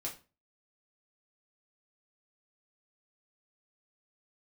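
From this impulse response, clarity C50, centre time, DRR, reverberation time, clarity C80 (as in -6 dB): 11.0 dB, 20 ms, -3.0 dB, 0.35 s, 17.0 dB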